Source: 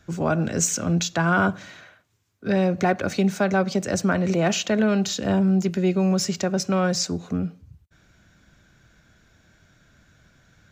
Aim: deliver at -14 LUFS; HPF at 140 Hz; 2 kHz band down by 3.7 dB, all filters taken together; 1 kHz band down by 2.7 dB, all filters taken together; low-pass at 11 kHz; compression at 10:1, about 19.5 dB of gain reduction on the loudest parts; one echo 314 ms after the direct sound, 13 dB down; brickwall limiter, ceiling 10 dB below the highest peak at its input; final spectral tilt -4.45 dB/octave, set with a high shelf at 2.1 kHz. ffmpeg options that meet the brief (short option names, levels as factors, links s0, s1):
-af "highpass=140,lowpass=11000,equalizer=f=1000:t=o:g=-3.5,equalizer=f=2000:t=o:g=-7,highshelf=f=2100:g=5.5,acompressor=threshold=0.02:ratio=10,alimiter=level_in=2.51:limit=0.0631:level=0:latency=1,volume=0.398,aecho=1:1:314:0.224,volume=21.1"